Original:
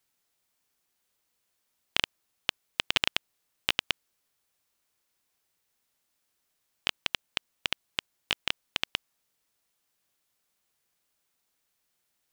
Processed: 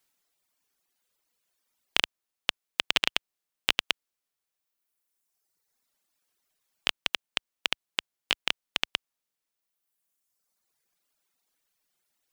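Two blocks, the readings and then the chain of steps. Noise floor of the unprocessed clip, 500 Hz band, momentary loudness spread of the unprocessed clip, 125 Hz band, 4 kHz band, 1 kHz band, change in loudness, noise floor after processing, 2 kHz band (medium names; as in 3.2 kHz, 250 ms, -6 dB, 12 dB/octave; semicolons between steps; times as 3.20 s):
-78 dBFS, +2.0 dB, 7 LU, -2.0 dB, +2.0 dB, +2.0 dB, +2.0 dB, under -85 dBFS, +2.0 dB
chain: reverb removal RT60 1.9 s; peaking EQ 72 Hz -7 dB 1.8 oct; trim +2.5 dB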